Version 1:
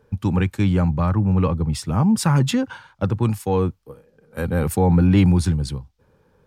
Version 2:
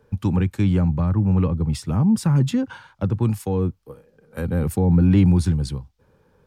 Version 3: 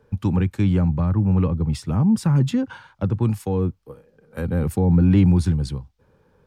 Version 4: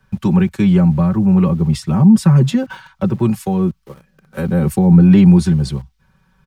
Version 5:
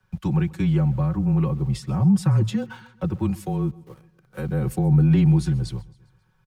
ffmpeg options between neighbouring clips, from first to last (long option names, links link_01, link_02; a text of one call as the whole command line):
ffmpeg -i in.wav -filter_complex "[0:a]acrossover=split=420[link_01][link_02];[link_02]acompressor=threshold=-33dB:ratio=4[link_03];[link_01][link_03]amix=inputs=2:normalize=0" out.wav
ffmpeg -i in.wav -af "highshelf=frequency=6300:gain=-4.5" out.wav
ffmpeg -i in.wav -filter_complex "[0:a]aecho=1:1:5.3:0.79,acrossover=split=210|880|2200[link_01][link_02][link_03][link_04];[link_02]aeval=exprs='val(0)*gte(abs(val(0)),0.00422)':channel_layout=same[link_05];[link_01][link_05][link_03][link_04]amix=inputs=4:normalize=0,volume=5dB" out.wav
ffmpeg -i in.wav -af "afreqshift=-23,aecho=1:1:134|268|402|536:0.075|0.039|0.0203|0.0105,volume=-8.5dB" out.wav